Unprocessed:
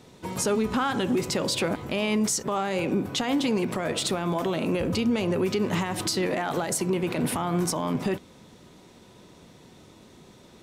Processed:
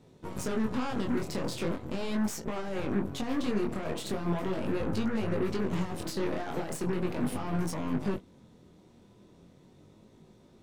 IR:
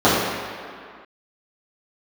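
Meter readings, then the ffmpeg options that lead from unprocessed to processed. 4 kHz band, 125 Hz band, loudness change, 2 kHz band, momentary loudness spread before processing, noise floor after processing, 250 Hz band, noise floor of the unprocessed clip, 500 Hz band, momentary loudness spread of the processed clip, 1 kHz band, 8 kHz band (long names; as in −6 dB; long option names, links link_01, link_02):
−12.0 dB, −4.0 dB, −6.5 dB, −8.5 dB, 3 LU, −59 dBFS, −5.0 dB, −52 dBFS, −6.5 dB, 5 LU, −8.0 dB, −13.0 dB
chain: -af "tiltshelf=frequency=710:gain=5,aeval=exprs='0.237*(cos(1*acos(clip(val(0)/0.237,-1,1)))-cos(1*PI/2))+0.0335*(cos(8*acos(clip(val(0)/0.237,-1,1)))-cos(8*PI/2))':channel_layout=same,flanger=delay=18.5:depth=6.9:speed=0.39,volume=-6dB"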